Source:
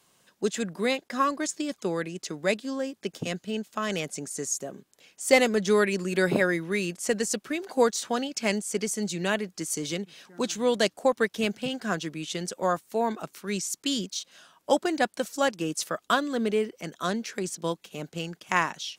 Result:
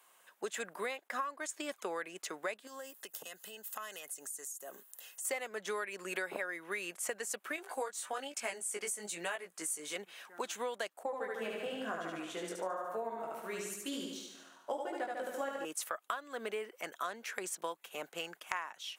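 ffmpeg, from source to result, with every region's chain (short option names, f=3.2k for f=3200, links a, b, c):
-filter_complex "[0:a]asettb=1/sr,asplit=3[a][b][c];[a]atrim=end=2.674[d];[b]atrim=start=2.67:end=5.25,asetpts=PTS-STARTPTS,afade=t=in:d=0.004:c=qsin,afade=t=out:st=2.576:d=0.004:c=qsin,aemphasis=mode=production:type=75fm,acompressor=threshold=-38dB:ratio=12:attack=3.2:release=140:knee=1:detection=peak,asuperstop=centerf=2300:order=20:qfactor=7.5[e];[c]atrim=start=5.246[f];[d][e]acrossfade=d=0.004:c1=hsin:c2=qsin[g];[g][f]acrossfade=d=0.004:c1=qsin:c2=hsin,asettb=1/sr,asplit=3[h][i][j];[h]atrim=end=7.564[k];[i]atrim=start=7.56:end=9.96,asetpts=PTS-STARTPTS,afade=t=in:d=0.004:c=qsin,afade=t=out:st=2.396:d=0.004:c=qsin,flanger=delay=16.5:depth=3.7:speed=1.1,equalizer=f=9k:w=1.8:g=8[l];[j]atrim=start=9.956[m];[k][l]acrossfade=d=0.004:c1=hsin:c2=qsin[n];[n][m]acrossfade=d=0.004:c1=qsin:c2=hsin,asettb=1/sr,asplit=3[o][p][q];[o]atrim=end=11.034[r];[p]atrim=start=11.03:end=15.65,asetpts=PTS-STARTPTS,afade=t=in:d=0.004:c=qsin,afade=t=out:st=4.616:d=0.004:c=qsin,aecho=1:1:73|146|219|292|365|438|511|584|657:0.708|0.418|0.246|0.145|0.0858|0.0506|0.0299|0.0176|0.0104,atrim=end_sample=203742,flanger=delay=17.5:depth=5:speed=1,tiltshelf=f=630:g=7[s];[q]atrim=start=15.646[t];[r][s]acrossfade=d=0.004:c1=hsin:c2=qsin[u];[u][t]acrossfade=d=0.004:c1=qsin:c2=hsin,highpass=790,equalizer=f=5k:t=o:w=1.4:g=-13.5,acompressor=threshold=-39dB:ratio=12,volume=4.5dB"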